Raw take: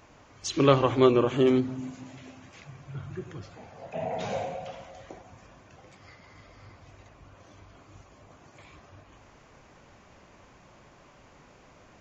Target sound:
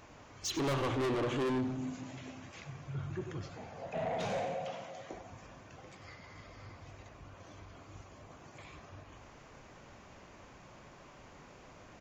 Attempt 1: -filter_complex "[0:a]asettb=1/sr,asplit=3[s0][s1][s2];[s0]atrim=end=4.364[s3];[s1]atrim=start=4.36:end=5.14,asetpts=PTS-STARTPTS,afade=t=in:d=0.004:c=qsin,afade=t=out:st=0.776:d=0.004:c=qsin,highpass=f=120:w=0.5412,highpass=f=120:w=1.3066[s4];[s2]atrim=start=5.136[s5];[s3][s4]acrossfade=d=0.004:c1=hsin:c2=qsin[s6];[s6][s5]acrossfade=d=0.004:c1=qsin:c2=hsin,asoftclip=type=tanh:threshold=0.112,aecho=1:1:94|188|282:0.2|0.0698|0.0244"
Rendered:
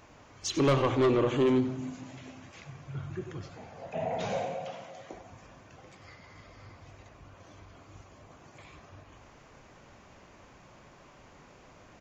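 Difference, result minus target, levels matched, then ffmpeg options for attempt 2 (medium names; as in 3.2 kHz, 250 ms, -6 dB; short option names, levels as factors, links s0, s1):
saturation: distortion -7 dB
-filter_complex "[0:a]asettb=1/sr,asplit=3[s0][s1][s2];[s0]atrim=end=4.364[s3];[s1]atrim=start=4.36:end=5.14,asetpts=PTS-STARTPTS,afade=t=in:d=0.004:c=qsin,afade=t=out:st=0.776:d=0.004:c=qsin,highpass=f=120:w=0.5412,highpass=f=120:w=1.3066[s4];[s2]atrim=start=5.136[s5];[s3][s4]acrossfade=d=0.004:c1=hsin:c2=qsin[s6];[s6][s5]acrossfade=d=0.004:c1=qsin:c2=hsin,asoftclip=type=tanh:threshold=0.0299,aecho=1:1:94|188|282:0.2|0.0698|0.0244"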